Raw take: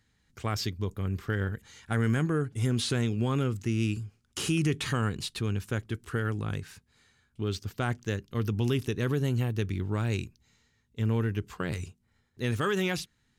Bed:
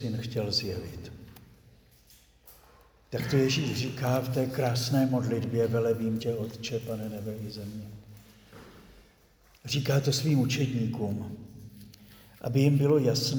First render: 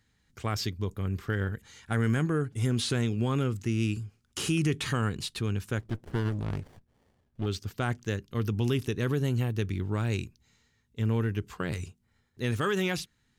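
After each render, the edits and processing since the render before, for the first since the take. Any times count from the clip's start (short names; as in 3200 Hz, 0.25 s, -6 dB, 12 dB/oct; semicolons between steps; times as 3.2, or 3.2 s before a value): 5.79–7.46 running maximum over 33 samples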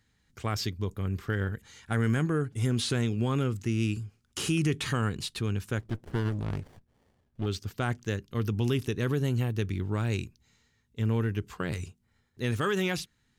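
nothing audible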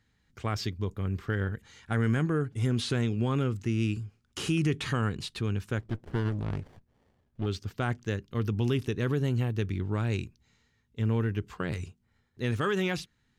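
high shelf 7000 Hz -10 dB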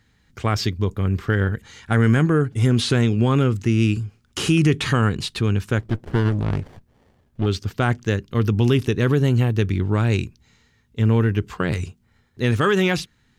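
gain +10 dB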